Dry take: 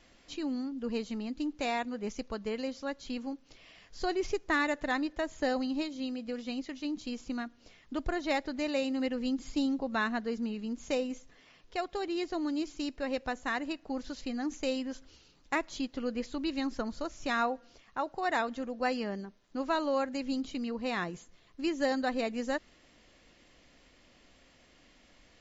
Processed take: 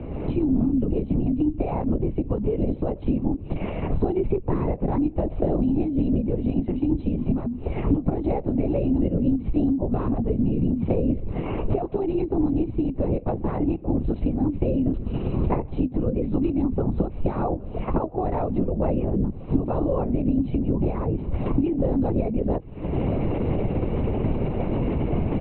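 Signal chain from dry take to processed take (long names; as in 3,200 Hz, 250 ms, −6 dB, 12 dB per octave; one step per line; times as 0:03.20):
camcorder AGC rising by 66 dB per second
moving average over 26 samples
low-shelf EQ 470 Hz +11 dB
mains-hum notches 60/120/180/240 Hz
double-tracking delay 16 ms −14 dB
linear-prediction vocoder at 8 kHz whisper
multiband upward and downward compressor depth 70%
level +2.5 dB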